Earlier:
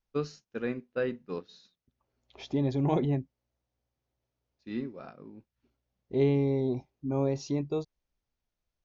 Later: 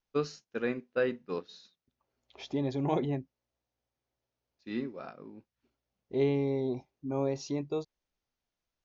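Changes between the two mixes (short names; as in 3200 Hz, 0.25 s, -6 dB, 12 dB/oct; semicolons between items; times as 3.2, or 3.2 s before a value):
first voice +3.0 dB; master: add low shelf 210 Hz -8.5 dB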